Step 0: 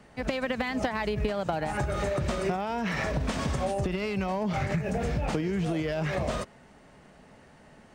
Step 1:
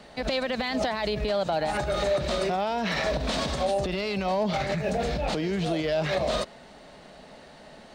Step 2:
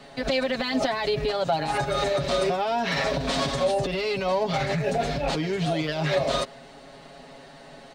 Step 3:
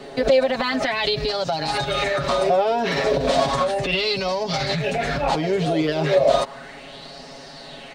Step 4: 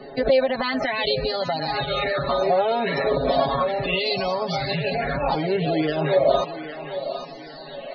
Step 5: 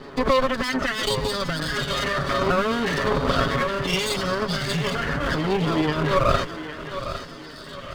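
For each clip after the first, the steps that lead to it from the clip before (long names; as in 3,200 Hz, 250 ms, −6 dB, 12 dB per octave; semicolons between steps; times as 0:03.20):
brickwall limiter −24.5 dBFS, peak gain reduction 8 dB; graphic EQ with 15 bands 100 Hz −11 dB, 630 Hz +6 dB, 4,000 Hz +12 dB; level +4 dB
comb filter 7.3 ms, depth 85%
downward compressor 3 to 1, threshold −27 dBFS, peak gain reduction 7 dB; auto-filter bell 0.34 Hz 380–5,400 Hz +12 dB; level +5 dB
feedback echo with a high-pass in the loop 807 ms, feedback 50%, high-pass 310 Hz, level −10 dB; spectral peaks only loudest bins 64; level −1.5 dB
lower of the sound and its delayed copy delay 0.61 ms; level +2 dB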